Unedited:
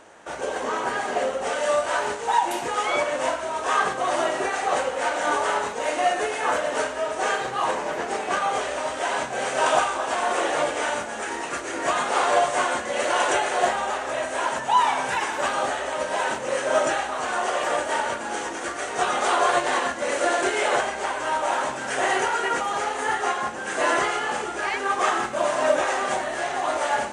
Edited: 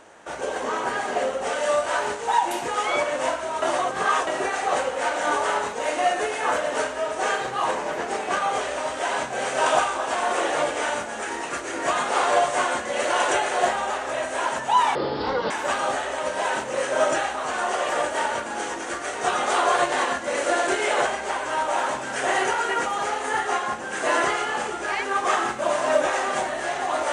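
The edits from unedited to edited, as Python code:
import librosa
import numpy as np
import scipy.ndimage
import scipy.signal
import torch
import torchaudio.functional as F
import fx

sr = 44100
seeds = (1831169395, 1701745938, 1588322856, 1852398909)

y = fx.edit(x, sr, fx.reverse_span(start_s=3.62, length_s=0.65),
    fx.speed_span(start_s=14.95, length_s=0.3, speed=0.54), tone=tone)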